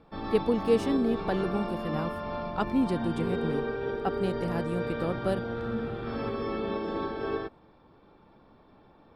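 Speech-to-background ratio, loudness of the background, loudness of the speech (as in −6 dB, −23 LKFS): 2.5 dB, −33.5 LKFS, −31.0 LKFS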